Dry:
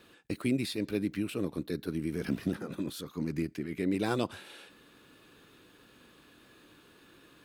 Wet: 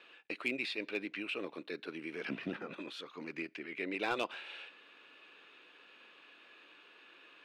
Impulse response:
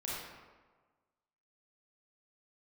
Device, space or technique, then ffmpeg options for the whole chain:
megaphone: -filter_complex "[0:a]asettb=1/sr,asplit=3[a][b][c];[a]atrim=end=2.304[d];[b]atrim=start=2.3:end=2.74,asetpts=PTS-STARTPTS,afade=t=in:d=0.004:c=qsin,afade=t=out:st=0.436:d=0.004:c=qsin,bass=f=250:g=11,treble=f=4k:g=-5[e];[c]atrim=start=2.736[f];[d][e]acrossfade=d=0.004:c1=hsin:c2=qsin[g];[g][f]acrossfade=d=0.004:c1=qsin:c2=hsin,highpass=540,lowpass=3.5k,equalizer=f=2.6k:t=o:w=0.57:g=9,asoftclip=type=hard:threshold=-24.5dB"

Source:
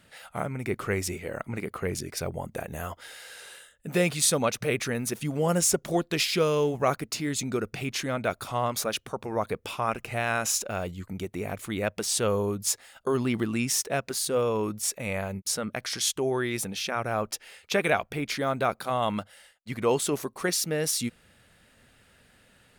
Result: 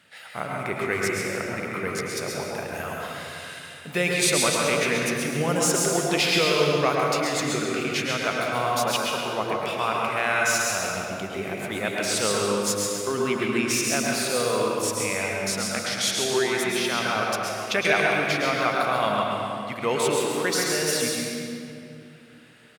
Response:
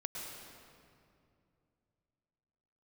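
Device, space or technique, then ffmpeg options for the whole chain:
PA in a hall: -filter_complex "[0:a]highpass=120,equalizer=f=2.4k:t=o:w=2.7:g=7.5,aecho=1:1:134:0.473[a];[1:a]atrim=start_sample=2205[b];[a][b]afir=irnorm=-1:irlink=0"

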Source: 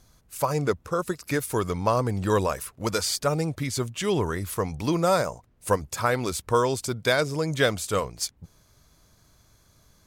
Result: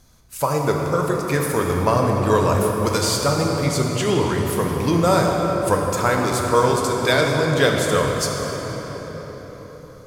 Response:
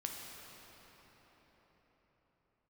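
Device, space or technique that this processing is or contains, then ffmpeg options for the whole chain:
cathedral: -filter_complex "[1:a]atrim=start_sample=2205[a];[0:a][a]afir=irnorm=-1:irlink=0,volume=6.5dB"

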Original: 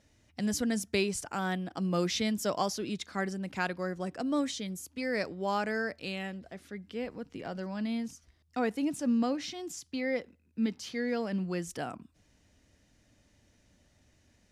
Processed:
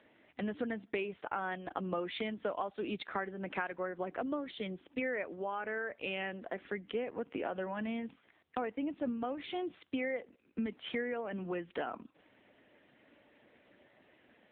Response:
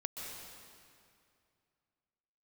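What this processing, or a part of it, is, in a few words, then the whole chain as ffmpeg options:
voicemail: -af "highpass=340,lowpass=2.9k,acompressor=threshold=-44dB:ratio=8,volume=11.5dB" -ar 8000 -c:a libopencore_amrnb -b:a 6700

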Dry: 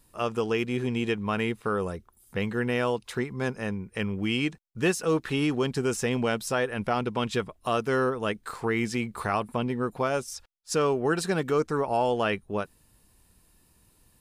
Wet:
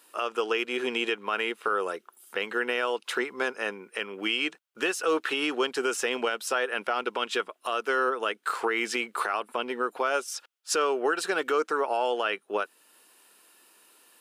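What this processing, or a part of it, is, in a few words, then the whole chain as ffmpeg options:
laptop speaker: -af "highpass=f=340:w=0.5412,highpass=f=340:w=1.3066,equalizer=f=1.4k:t=o:w=0.51:g=7.5,equalizer=f=2.9k:t=o:w=0.59:g=6.5,alimiter=limit=-21.5dB:level=0:latency=1:release=363,volume=5.5dB"

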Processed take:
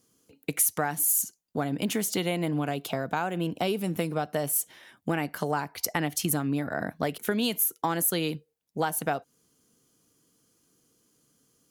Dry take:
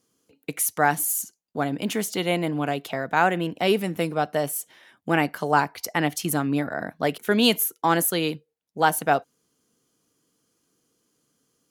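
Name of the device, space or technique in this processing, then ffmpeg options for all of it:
ASMR close-microphone chain: -filter_complex "[0:a]lowshelf=f=200:g=6.5,acompressor=threshold=-24dB:ratio=10,highshelf=f=6.3k:g=6,asettb=1/sr,asplit=3[a][b][c];[a]atrim=end=2.754[d];[b]atrim=start=2.75:end=3.96,asetpts=PTS-STARTPTS,afade=t=in:d=0.004:c=qsin,afade=t=out:st=1.206:d=0.004:c=qsin,equalizer=f=1.9k:t=o:w=0.34:g=-7.5[e];[c]atrim=start=3.956[f];[d][e]acrossfade=d=0.004:c1=hsin:c2=qsin[g];[g][f]acrossfade=d=0.004:c1=qsin:c2=hsin"

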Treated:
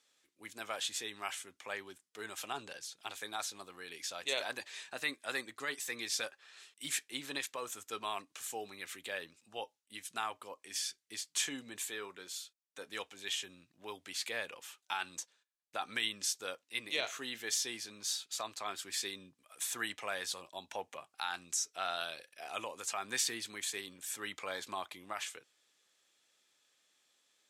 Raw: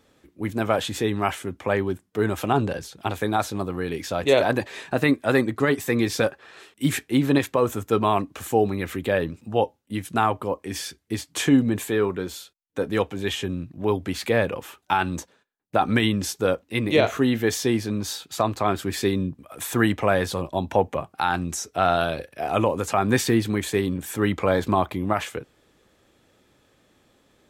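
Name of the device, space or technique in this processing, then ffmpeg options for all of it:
piezo pickup straight into a mixer: -af "lowpass=7.3k,aderivative"

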